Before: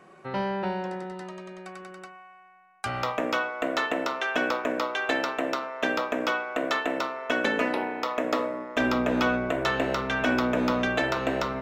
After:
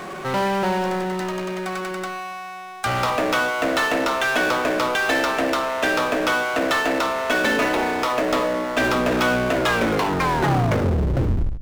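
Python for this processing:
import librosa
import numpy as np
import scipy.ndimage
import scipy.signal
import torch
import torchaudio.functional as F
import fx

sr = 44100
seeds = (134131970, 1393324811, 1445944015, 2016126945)

y = fx.tape_stop_end(x, sr, length_s=2.07)
y = fx.hum_notches(y, sr, base_hz=50, count=10)
y = fx.power_curve(y, sr, exponent=0.5)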